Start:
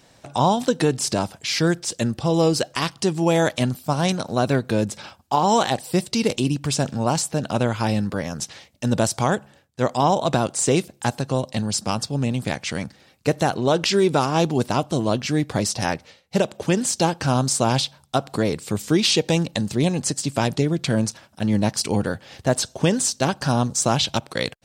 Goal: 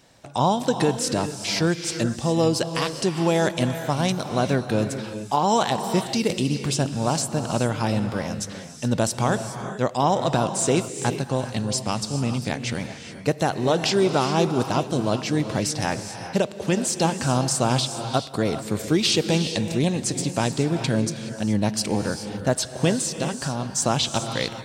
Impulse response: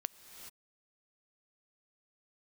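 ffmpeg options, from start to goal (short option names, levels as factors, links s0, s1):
-filter_complex "[0:a]asettb=1/sr,asplit=3[s0][s1][s2];[s0]atrim=end=22.994[s3];[s1]atrim=start=22.99:end=23.76,asetpts=PTS-STARTPTS,afade=t=in:d=0.004:c=qsin,afade=t=out:st=0.766:d=0.004:c=qsin,acompressor=threshold=0.0794:ratio=6[s4];[s2]atrim=start=23.756[s5];[s3][s4]acrossfade=d=0.004:c1=hsin:c2=qsin[s6];[s6][s5]acrossfade=d=0.004:c1=qsin:c2=hsin[s7];[1:a]atrim=start_sample=2205[s8];[s7][s8]afir=irnorm=-1:irlink=0"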